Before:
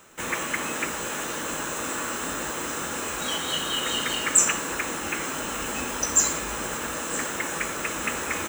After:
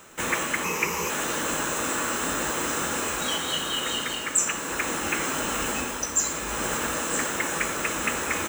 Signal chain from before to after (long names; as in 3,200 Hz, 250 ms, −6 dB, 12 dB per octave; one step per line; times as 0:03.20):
0:00.64–0:01.10: EQ curve with evenly spaced ripples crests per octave 0.8, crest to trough 12 dB
speech leveller within 5 dB 0.5 s